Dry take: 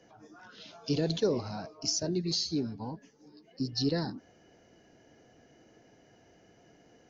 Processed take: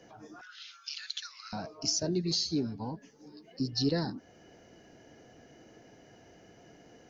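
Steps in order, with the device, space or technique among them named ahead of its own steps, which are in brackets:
0:00.41–0:01.53: Chebyshev high-pass filter 1,300 Hz, order 5
parallel compression (in parallel at −4 dB: downward compressor, threshold −49 dBFS, peak gain reduction 22 dB)

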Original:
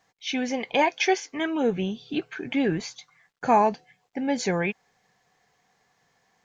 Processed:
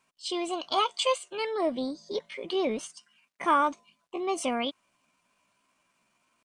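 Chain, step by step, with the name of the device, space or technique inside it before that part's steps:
0:02.87–0:03.69: high-pass filter 120 Hz 6 dB per octave
chipmunk voice (pitch shifter +5.5 semitones)
level −4 dB

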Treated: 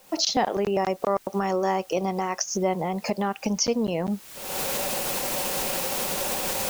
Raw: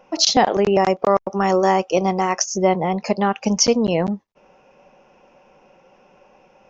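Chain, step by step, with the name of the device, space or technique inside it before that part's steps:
cheap recorder with automatic gain (white noise bed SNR 29 dB; camcorder AGC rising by 49 dB per second)
level −8 dB

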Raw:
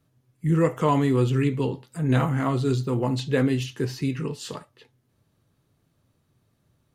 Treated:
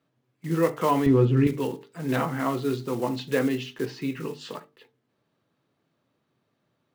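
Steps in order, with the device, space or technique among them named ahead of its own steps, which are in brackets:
early digital voice recorder (band-pass filter 220–3,900 Hz; one scale factor per block 5 bits)
0:01.06–0:01.47: RIAA equalisation playback
mains-hum notches 50/100/150/200/250/300/350/400/450 Hz

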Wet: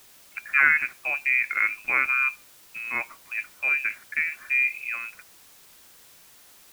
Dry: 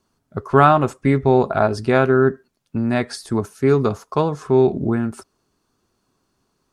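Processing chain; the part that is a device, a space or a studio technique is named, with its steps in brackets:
scrambled radio voice (band-pass filter 380–2,700 Hz; voice inversion scrambler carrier 2,800 Hz; white noise bed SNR 25 dB)
level −5.5 dB

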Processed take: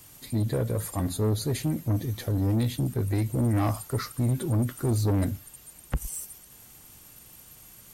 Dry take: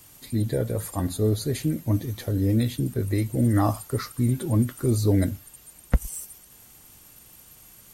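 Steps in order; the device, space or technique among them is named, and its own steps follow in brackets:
open-reel tape (soft clipping −21 dBFS, distortion −12 dB; parametric band 130 Hz +2 dB; white noise bed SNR 47 dB)

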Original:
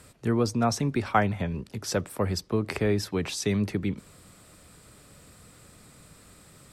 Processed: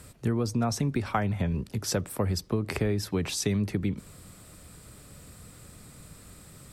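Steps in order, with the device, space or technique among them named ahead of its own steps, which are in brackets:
ASMR close-microphone chain (low-shelf EQ 200 Hz +7 dB; downward compressor 6 to 1, threshold −23 dBFS, peak gain reduction 8 dB; high-shelf EQ 9,800 Hz +7.5 dB)

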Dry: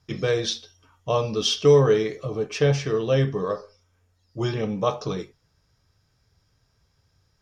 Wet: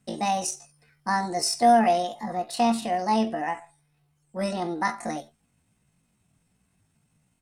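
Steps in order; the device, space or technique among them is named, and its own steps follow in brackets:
chipmunk voice (pitch shifter +8.5 semitones)
level −2.5 dB

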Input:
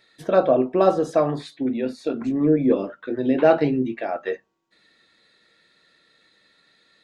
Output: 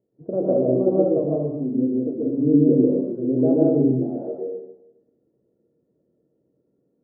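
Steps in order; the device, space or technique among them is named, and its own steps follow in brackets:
next room (low-pass filter 490 Hz 24 dB per octave; convolution reverb RT60 0.90 s, pre-delay 112 ms, DRR −4.5 dB)
high-pass filter 62 Hz
level −2.5 dB

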